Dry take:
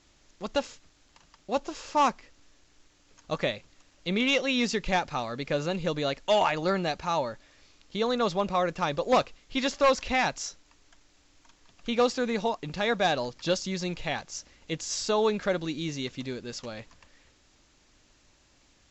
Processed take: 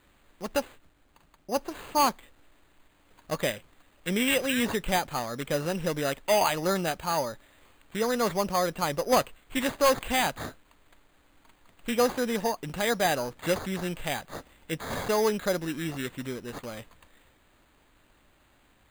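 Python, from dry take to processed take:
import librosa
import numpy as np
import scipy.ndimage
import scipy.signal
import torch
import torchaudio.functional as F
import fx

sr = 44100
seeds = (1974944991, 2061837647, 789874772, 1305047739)

y = fx.lowpass(x, sr, hz=fx.line((0.58, 2800.0), (1.54, 1500.0)), slope=6, at=(0.58, 1.54), fade=0.02)
y = np.repeat(y[::8], 8)[:len(y)]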